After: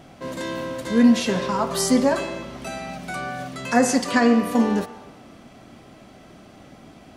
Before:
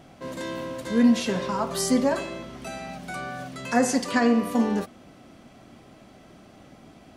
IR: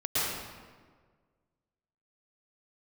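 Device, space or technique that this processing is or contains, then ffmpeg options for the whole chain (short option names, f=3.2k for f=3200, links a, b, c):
filtered reverb send: -filter_complex "[0:a]asplit=2[a][b];[b]highpass=590,lowpass=8.2k[c];[1:a]atrim=start_sample=2205[d];[c][d]afir=irnorm=-1:irlink=0,volume=-24dB[e];[a][e]amix=inputs=2:normalize=0,volume=3.5dB"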